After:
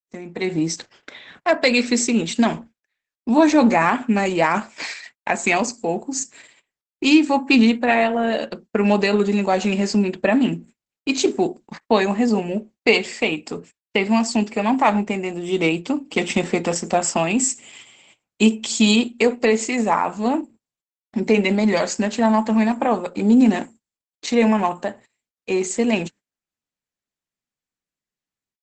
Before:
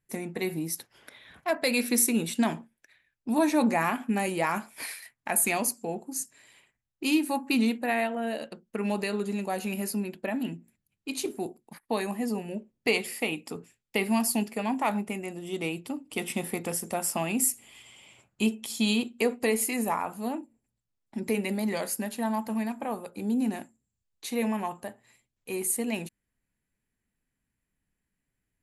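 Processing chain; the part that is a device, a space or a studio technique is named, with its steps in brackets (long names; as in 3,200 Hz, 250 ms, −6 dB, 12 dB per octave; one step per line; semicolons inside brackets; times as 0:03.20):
0:17.49–0:19.29: dynamic equaliser 8,300 Hz, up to +5 dB, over −52 dBFS, Q 1.4
video call (high-pass filter 160 Hz 12 dB per octave; automatic gain control gain up to 16 dB; noise gate −40 dBFS, range −26 dB; level −1 dB; Opus 12 kbit/s 48,000 Hz)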